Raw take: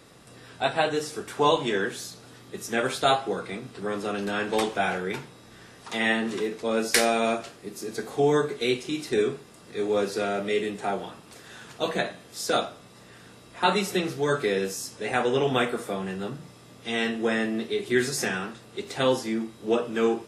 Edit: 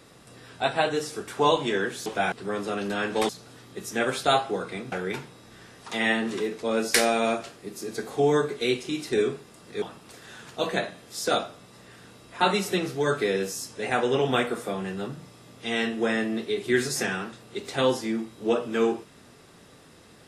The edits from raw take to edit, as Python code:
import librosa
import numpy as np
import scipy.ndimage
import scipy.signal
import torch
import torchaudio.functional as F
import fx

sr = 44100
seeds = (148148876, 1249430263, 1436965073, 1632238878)

y = fx.edit(x, sr, fx.swap(start_s=2.06, length_s=1.63, other_s=4.66, other_length_s=0.26),
    fx.cut(start_s=9.82, length_s=1.22), tone=tone)